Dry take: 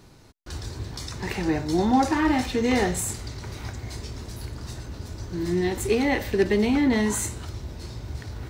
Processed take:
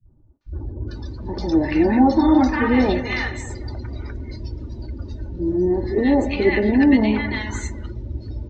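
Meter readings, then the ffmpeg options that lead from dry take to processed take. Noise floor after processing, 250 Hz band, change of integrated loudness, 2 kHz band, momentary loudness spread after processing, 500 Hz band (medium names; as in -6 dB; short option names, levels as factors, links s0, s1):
-49 dBFS, +6.5 dB, +6.0 dB, +4.5 dB, 17 LU, +4.0 dB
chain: -filter_complex "[0:a]lowpass=f=6300:w=0.5412,lowpass=f=6300:w=1.3066,asplit=2[s0][s1];[s1]adelay=209,lowpass=f=3300:p=1,volume=0.224,asplit=2[s2][s3];[s3]adelay=209,lowpass=f=3300:p=1,volume=0.48,asplit=2[s4][s5];[s5]adelay=209,lowpass=f=3300:p=1,volume=0.48,asplit=2[s6][s7];[s7]adelay=209,lowpass=f=3300:p=1,volume=0.48,asplit=2[s8][s9];[s9]adelay=209,lowpass=f=3300:p=1,volume=0.48[s10];[s2][s4][s6][s8][s10]amix=inputs=5:normalize=0[s11];[s0][s11]amix=inputs=2:normalize=0,afftdn=nr=21:nf=-39,aemphasis=mode=reproduction:type=cd,aecho=1:1:3.4:0.46,acrossover=split=160|990[s12][s13][s14];[s13]adelay=60[s15];[s14]adelay=410[s16];[s12][s15][s16]amix=inputs=3:normalize=0,volume=1.78"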